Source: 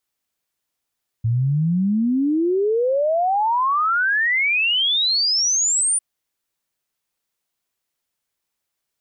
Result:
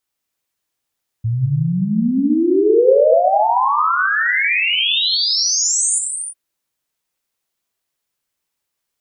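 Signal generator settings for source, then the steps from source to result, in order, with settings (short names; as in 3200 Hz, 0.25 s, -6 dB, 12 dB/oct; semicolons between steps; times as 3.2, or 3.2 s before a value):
log sweep 110 Hz -> 9500 Hz 4.75 s -16 dBFS
dynamic EQ 520 Hz, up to +6 dB, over -35 dBFS, Q 1.3; non-linear reverb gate 0.36 s flat, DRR 2.5 dB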